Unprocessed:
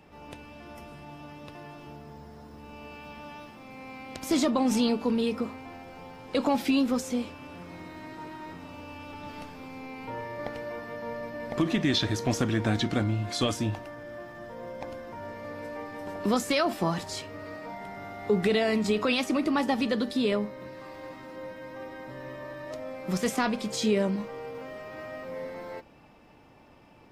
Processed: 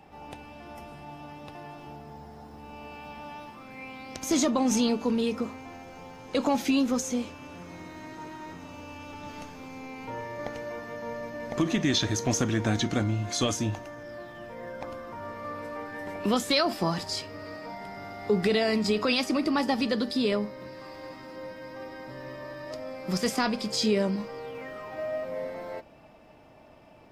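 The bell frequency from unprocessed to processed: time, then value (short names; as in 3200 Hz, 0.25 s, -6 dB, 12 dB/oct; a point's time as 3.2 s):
bell +11.5 dB 0.21 oct
3.44 s 790 Hz
4.19 s 6400 Hz
13.98 s 6400 Hz
14.88 s 1200 Hz
15.74 s 1200 Hz
16.67 s 4900 Hz
24.37 s 4900 Hz
24.99 s 640 Hz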